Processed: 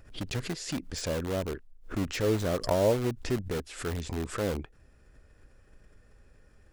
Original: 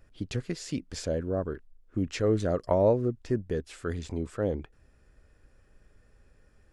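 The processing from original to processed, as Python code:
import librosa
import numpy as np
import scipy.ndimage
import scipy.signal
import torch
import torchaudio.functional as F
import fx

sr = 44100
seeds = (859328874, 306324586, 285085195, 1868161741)

p1 = (np.mod(10.0 ** (28.0 / 20.0) * x + 1.0, 2.0) - 1.0) / 10.0 ** (28.0 / 20.0)
p2 = x + (p1 * librosa.db_to_amplitude(-5.5))
p3 = fx.pre_swell(p2, sr, db_per_s=140.0)
y = p3 * librosa.db_to_amplitude(-2.0)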